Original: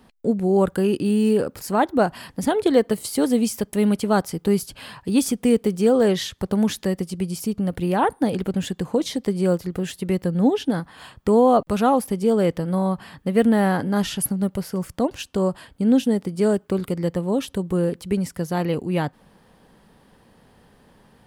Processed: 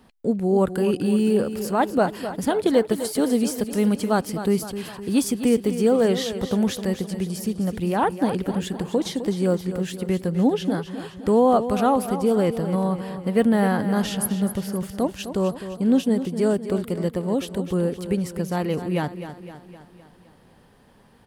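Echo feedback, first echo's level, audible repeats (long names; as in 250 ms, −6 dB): 54%, −11.0 dB, 5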